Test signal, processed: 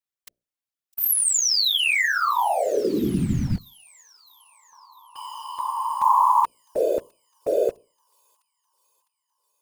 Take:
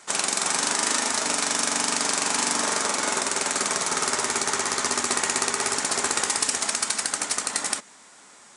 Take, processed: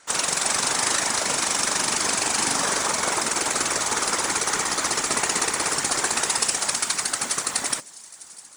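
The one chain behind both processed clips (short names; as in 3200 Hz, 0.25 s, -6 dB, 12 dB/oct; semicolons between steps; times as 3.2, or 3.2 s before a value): notches 60/120/180/240/300/360/420/480/540/600 Hz; in parallel at -4 dB: bit-crush 6-bit; on the sum: thin delay 0.656 s, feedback 60%, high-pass 4500 Hz, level -18 dB; whisperiser; gain -3 dB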